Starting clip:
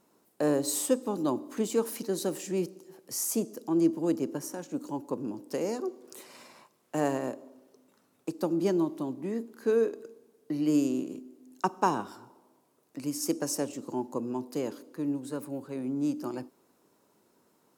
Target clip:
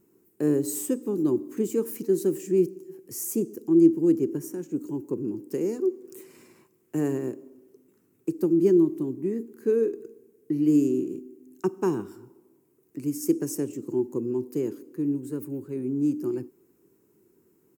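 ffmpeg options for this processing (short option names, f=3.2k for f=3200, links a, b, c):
-af "firequalizer=gain_entry='entry(110,0);entry(250,-6);entry(370,3);entry(580,-20);entry(1800,-12);entry(2500,-12);entry(3700,-20);entry(7300,-9);entry(11000,-9);entry(15000,0)':delay=0.05:min_phase=1,volume=7.5dB"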